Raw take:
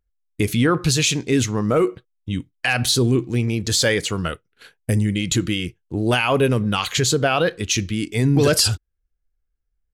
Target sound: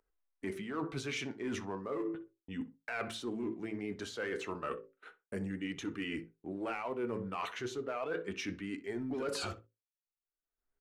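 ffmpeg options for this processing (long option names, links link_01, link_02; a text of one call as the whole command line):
ffmpeg -i in.wav -filter_complex "[0:a]acrossover=split=270 2200:gain=0.1 1 0.126[link_01][link_02][link_03];[link_01][link_02][link_03]amix=inputs=3:normalize=0,bandreject=frequency=60:width_type=h:width=6,bandreject=frequency=120:width_type=h:width=6,bandreject=frequency=180:width_type=h:width=6,bandreject=frequency=240:width_type=h:width=6,bandreject=frequency=300:width_type=h:width=6,bandreject=frequency=360:width_type=h:width=6,bandreject=frequency=420:width_type=h:width=6,bandreject=frequency=480:width_type=h:width=6,bandreject=frequency=540:width_type=h:width=6,bandreject=frequency=600:width_type=h:width=6,asplit=2[link_04][link_05];[link_05]asoftclip=type=hard:threshold=-21.5dB,volume=-6dB[link_06];[link_04][link_06]amix=inputs=2:normalize=0,agate=range=-33dB:threshold=-41dB:ratio=3:detection=peak,flanger=delay=1.9:depth=7.2:regen=59:speed=0.37:shape=triangular,areverse,acompressor=threshold=-36dB:ratio=6,areverse,asetrate=40517,aresample=44100,acompressor=mode=upward:threshold=-53dB:ratio=2.5,asplit=2[link_07][link_08];[link_08]adelay=62,lowpass=frequency=2200:poles=1,volume=-15dB,asplit=2[link_09][link_10];[link_10]adelay=62,lowpass=frequency=2200:poles=1,volume=0.17[link_11];[link_07][link_09][link_11]amix=inputs=3:normalize=0" out.wav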